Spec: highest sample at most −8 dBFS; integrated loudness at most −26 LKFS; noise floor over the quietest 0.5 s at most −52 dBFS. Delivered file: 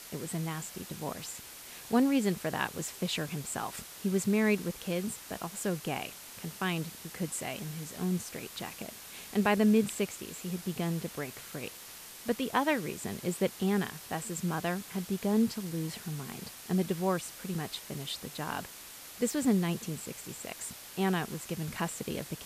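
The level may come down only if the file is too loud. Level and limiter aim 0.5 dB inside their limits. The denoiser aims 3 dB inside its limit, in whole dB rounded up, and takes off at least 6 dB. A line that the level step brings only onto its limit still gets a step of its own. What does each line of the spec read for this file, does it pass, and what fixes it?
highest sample −14.0 dBFS: in spec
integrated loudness −33.5 LKFS: in spec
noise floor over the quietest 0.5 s −48 dBFS: out of spec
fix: broadband denoise 7 dB, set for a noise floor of −48 dBFS

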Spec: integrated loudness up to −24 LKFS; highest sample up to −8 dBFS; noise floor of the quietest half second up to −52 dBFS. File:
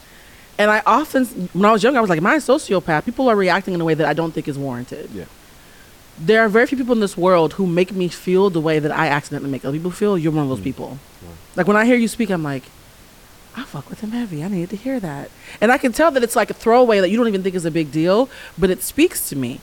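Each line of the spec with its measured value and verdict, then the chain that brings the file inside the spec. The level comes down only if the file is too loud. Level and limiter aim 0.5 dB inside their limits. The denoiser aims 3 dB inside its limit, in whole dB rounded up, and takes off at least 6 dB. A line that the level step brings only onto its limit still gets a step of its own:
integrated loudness −17.5 LKFS: out of spec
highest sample −3.0 dBFS: out of spec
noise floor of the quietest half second −45 dBFS: out of spec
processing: broadband denoise 6 dB, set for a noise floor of −45 dBFS
level −7 dB

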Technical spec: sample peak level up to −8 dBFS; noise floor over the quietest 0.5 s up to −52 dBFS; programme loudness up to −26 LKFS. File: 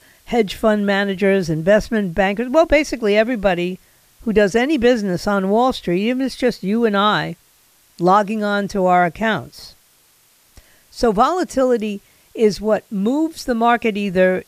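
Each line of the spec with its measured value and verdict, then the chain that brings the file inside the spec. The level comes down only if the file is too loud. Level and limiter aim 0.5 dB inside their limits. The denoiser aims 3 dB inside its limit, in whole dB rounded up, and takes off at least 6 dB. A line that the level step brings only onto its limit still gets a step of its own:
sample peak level −2.5 dBFS: out of spec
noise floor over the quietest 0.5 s −55 dBFS: in spec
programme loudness −17.5 LKFS: out of spec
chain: level −9 dB

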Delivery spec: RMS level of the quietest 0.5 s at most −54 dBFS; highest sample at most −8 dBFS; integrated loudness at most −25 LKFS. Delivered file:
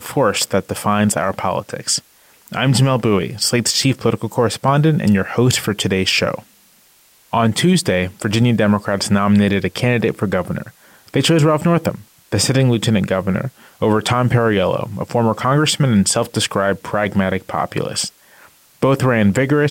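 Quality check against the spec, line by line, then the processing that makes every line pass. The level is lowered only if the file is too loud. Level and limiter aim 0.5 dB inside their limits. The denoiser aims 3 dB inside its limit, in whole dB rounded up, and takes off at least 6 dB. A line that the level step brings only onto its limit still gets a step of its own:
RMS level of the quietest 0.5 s −52 dBFS: out of spec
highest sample −5.5 dBFS: out of spec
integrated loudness −17.0 LKFS: out of spec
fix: level −8.5 dB

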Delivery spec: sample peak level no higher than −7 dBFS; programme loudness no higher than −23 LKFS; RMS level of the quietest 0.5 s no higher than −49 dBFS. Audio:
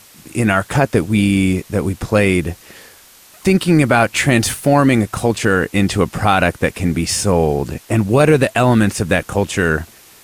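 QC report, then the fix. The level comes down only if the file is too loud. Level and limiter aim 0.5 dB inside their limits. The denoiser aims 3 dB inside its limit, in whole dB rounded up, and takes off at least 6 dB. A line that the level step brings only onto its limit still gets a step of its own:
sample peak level −2.5 dBFS: out of spec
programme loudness −15.5 LKFS: out of spec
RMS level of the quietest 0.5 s −45 dBFS: out of spec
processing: level −8 dB

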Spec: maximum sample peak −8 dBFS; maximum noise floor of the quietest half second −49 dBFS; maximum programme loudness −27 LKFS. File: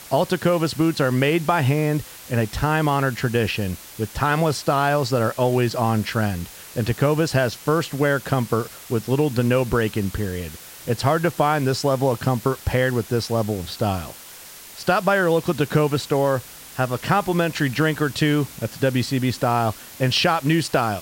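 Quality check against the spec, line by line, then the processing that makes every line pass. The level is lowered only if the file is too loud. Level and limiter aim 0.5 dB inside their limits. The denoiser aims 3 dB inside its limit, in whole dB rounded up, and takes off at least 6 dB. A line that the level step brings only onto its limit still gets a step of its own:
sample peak −4.5 dBFS: out of spec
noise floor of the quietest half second −41 dBFS: out of spec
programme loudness −21.5 LKFS: out of spec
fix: broadband denoise 6 dB, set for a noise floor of −41 dBFS
level −6 dB

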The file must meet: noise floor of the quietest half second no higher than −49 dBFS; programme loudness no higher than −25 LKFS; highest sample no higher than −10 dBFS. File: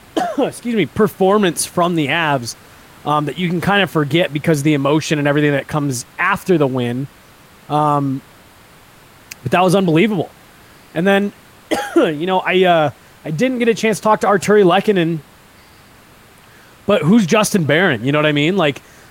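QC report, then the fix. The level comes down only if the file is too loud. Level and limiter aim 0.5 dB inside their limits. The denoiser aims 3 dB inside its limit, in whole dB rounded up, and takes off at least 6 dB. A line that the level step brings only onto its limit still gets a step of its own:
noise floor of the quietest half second −45 dBFS: out of spec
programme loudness −15.5 LKFS: out of spec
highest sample −3.0 dBFS: out of spec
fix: level −10 dB

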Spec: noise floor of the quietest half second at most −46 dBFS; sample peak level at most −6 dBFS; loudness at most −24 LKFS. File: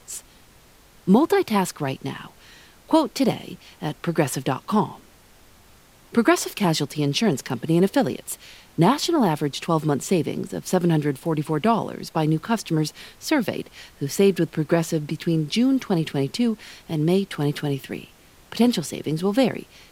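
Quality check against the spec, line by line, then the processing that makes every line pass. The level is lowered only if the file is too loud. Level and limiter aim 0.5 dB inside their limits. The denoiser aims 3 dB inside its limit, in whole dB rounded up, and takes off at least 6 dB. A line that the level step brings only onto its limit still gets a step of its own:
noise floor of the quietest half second −52 dBFS: in spec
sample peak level −4.5 dBFS: out of spec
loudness −23.0 LKFS: out of spec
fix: level −1.5 dB
brickwall limiter −6.5 dBFS

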